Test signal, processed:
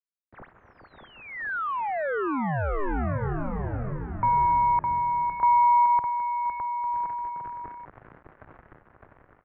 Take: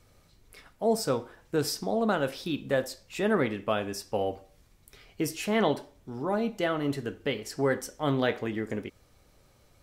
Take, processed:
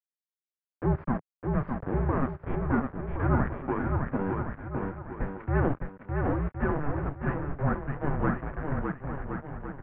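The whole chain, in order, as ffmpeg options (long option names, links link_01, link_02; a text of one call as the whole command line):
ffmpeg -i in.wav -filter_complex "[0:a]aeval=exprs='val(0)*gte(abs(val(0)),0.0335)':channel_layout=same,aeval=exprs='0.251*(cos(1*acos(clip(val(0)/0.251,-1,1)))-cos(1*PI/2))+0.0794*(cos(2*acos(clip(val(0)/0.251,-1,1)))-cos(2*PI/2))+0.0126*(cos(6*acos(clip(val(0)/0.251,-1,1)))-cos(6*PI/2))':channel_layout=same,asplit=2[link_01][link_02];[link_02]aecho=0:1:610|1068|1411|1668|1861:0.631|0.398|0.251|0.158|0.1[link_03];[link_01][link_03]amix=inputs=2:normalize=0,highpass=frequency=150:width_type=q:width=0.5412,highpass=frequency=150:width_type=q:width=1.307,lowpass=frequency=2000:width_type=q:width=0.5176,lowpass=frequency=2000:width_type=q:width=0.7071,lowpass=frequency=2000:width_type=q:width=1.932,afreqshift=-290" out.wav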